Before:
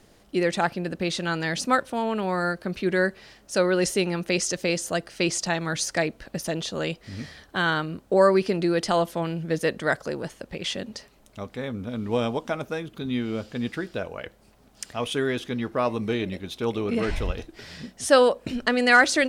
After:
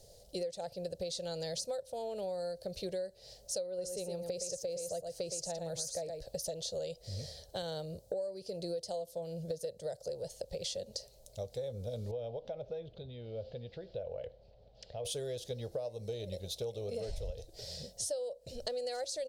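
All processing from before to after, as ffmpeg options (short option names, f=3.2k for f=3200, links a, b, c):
-filter_complex "[0:a]asettb=1/sr,asplit=3[a][b][c];[a]atrim=end=3.674[d];[b]atrim=start=3.67:end=6.22,asetpts=PTS-STARTPTS,afade=t=in:d=0.004:c=qsin,afade=t=out:st=2.546:d=0.004:c=qsin,equalizer=f=3.6k:t=o:w=1.9:g=-6.5,aecho=1:1:115:0.422,atrim=end_sample=112455[e];[c]atrim=start=6.216[f];[d][e]acrossfade=d=0.004:c1=hsin:c2=qsin[g];[g][f]acrossfade=d=0.004:c1=qsin:c2=hsin,asettb=1/sr,asplit=3[h][i][j];[h]atrim=end=7.624[k];[i]atrim=start=7.62:end=10.1,asetpts=PTS-STARTPTS,afade=t=in:d=0.004:c=qsin,afade=t=out:st=2.476:d=0.004:c=qsin,highpass=49,equalizer=f=2.1k:w=0.55:g=-4[l];[j]atrim=start=10.096[m];[k][l]acrossfade=d=0.004:c1=hsin:c2=qsin[n];[n][m]acrossfade=d=0.004:c1=qsin:c2=hsin,asettb=1/sr,asplit=3[o][p][q];[o]atrim=end=12.114[r];[p]atrim=start=12.11:end=15.05,asetpts=PTS-STARTPTS,afade=t=in:d=0.004:c=qsin,afade=t=out:st=2.936:d=0.004:c=qsin,lowpass=f=3.4k:w=0.5412,lowpass=f=3.4k:w=1.3066,acompressor=threshold=-36dB:ratio=2.5:attack=3.2:release=140:knee=1:detection=peak[s];[q]atrim=start=15.046[t];[r][s]acrossfade=d=0.004:c1=hsin:c2=qsin[u];[u][t]acrossfade=d=0.004:c1=qsin:c2=hsin,firequalizer=gain_entry='entry(110,0);entry(270,-22);entry(520,7);entry(1100,-23);entry(2400,-16);entry(4200,3)':delay=0.05:min_phase=1,acompressor=threshold=-34dB:ratio=16,volume=-1dB"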